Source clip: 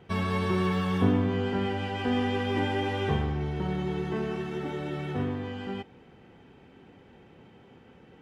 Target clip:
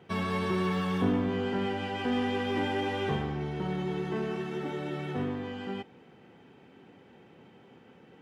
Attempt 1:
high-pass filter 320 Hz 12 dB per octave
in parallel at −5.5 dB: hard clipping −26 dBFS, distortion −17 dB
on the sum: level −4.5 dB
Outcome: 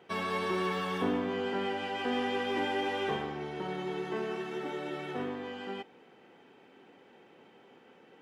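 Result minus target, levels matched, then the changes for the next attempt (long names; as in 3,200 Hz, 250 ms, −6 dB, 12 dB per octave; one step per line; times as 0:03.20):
125 Hz band −8.0 dB
change: high-pass filter 130 Hz 12 dB per octave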